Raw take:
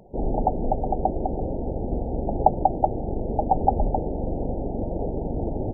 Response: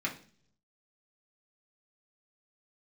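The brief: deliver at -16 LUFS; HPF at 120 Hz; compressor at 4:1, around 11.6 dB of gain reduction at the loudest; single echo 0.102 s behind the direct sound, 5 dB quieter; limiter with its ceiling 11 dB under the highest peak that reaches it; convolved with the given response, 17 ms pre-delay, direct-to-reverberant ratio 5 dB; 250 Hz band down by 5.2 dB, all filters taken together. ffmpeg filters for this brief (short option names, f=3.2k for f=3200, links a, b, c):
-filter_complex "[0:a]highpass=120,equalizer=f=250:t=o:g=-6.5,acompressor=threshold=-28dB:ratio=4,alimiter=level_in=0.5dB:limit=-24dB:level=0:latency=1,volume=-0.5dB,aecho=1:1:102:0.562,asplit=2[a][b];[1:a]atrim=start_sample=2205,adelay=17[c];[b][c]afir=irnorm=-1:irlink=0,volume=-10.5dB[d];[a][d]amix=inputs=2:normalize=0,volume=17.5dB"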